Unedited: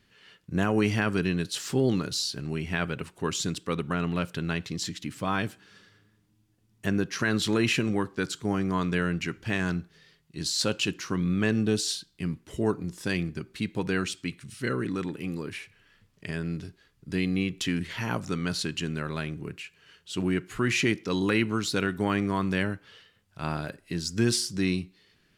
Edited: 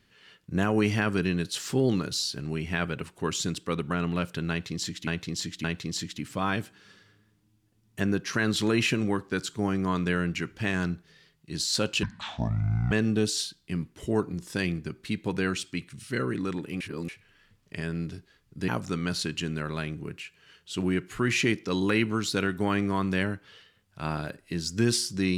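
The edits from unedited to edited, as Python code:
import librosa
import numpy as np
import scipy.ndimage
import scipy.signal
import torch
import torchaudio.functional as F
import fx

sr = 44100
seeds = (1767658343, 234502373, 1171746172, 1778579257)

y = fx.edit(x, sr, fx.repeat(start_s=4.5, length_s=0.57, count=3),
    fx.speed_span(start_s=10.89, length_s=0.53, speed=0.6),
    fx.reverse_span(start_s=15.31, length_s=0.28),
    fx.cut(start_s=17.19, length_s=0.89), tone=tone)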